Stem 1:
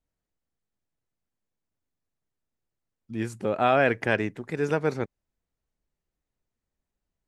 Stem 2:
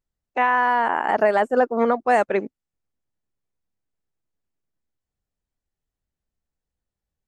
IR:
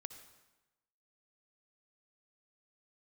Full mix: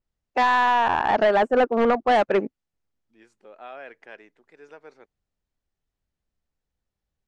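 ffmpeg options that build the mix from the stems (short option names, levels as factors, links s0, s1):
-filter_complex "[0:a]highpass=430,volume=0.126[s0];[1:a]asoftclip=type=hard:threshold=0.158,adynamicequalizer=threshold=0.01:dfrequency=3900:dqfactor=0.7:tfrequency=3900:tqfactor=0.7:attack=5:release=100:ratio=0.375:range=3.5:mode=cutabove:tftype=highshelf,volume=1.26[s1];[s0][s1]amix=inputs=2:normalize=0,lowpass=6300"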